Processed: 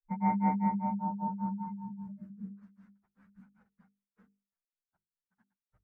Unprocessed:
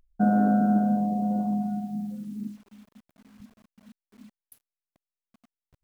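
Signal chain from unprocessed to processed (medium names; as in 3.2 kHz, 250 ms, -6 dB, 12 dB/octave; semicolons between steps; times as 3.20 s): frequency axis rescaled in octaves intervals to 121%; FFT filter 120 Hz 0 dB, 190 Hz +5 dB, 280 Hz -8 dB, 430 Hz +1 dB, 700 Hz +1 dB, 1.5 kHz +10 dB, 3.4 kHz -15 dB; granulator 175 ms, grains 5.1 per s, pitch spread up and down by 0 st; hum notches 50/100/150/200/250/300/350/400/450 Hz; trim -3 dB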